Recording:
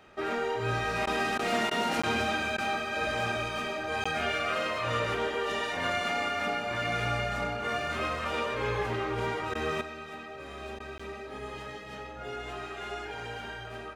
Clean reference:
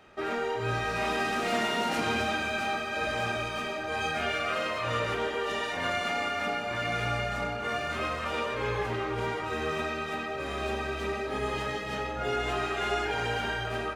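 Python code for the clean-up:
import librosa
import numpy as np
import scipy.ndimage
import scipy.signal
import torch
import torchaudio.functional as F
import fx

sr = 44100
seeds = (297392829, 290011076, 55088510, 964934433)

y = fx.fix_interpolate(x, sr, at_s=(2.02, 4.04, 10.98), length_ms=15.0)
y = fx.fix_interpolate(y, sr, at_s=(1.06, 1.38, 1.7, 2.57, 9.54, 10.79), length_ms=10.0)
y = fx.fix_level(y, sr, at_s=9.81, step_db=8.5)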